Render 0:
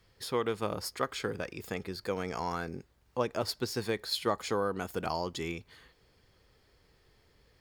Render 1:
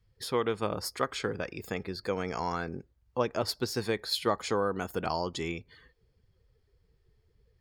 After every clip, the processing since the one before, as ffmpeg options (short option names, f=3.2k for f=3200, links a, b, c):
-af "afftdn=nr=16:nf=-57,volume=2dB"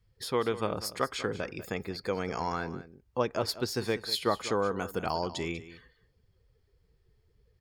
-af "aecho=1:1:193:0.178"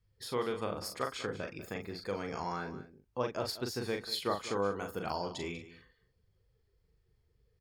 -filter_complex "[0:a]asplit=2[a][b];[b]adelay=40,volume=-5dB[c];[a][c]amix=inputs=2:normalize=0,volume=-6dB"